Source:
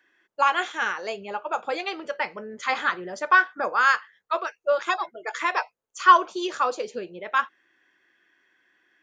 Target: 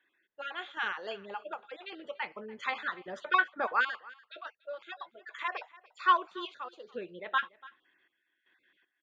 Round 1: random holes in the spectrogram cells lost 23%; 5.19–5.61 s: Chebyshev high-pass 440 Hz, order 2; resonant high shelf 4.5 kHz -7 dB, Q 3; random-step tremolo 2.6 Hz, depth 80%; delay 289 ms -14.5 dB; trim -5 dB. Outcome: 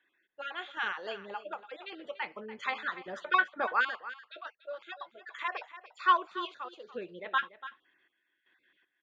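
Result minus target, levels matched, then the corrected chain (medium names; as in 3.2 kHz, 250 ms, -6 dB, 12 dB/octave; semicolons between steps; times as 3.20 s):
echo-to-direct +7 dB
random holes in the spectrogram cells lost 23%; 5.19–5.61 s: Chebyshev high-pass 440 Hz, order 2; resonant high shelf 4.5 kHz -7 dB, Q 3; random-step tremolo 2.6 Hz, depth 80%; delay 289 ms -21.5 dB; trim -5 dB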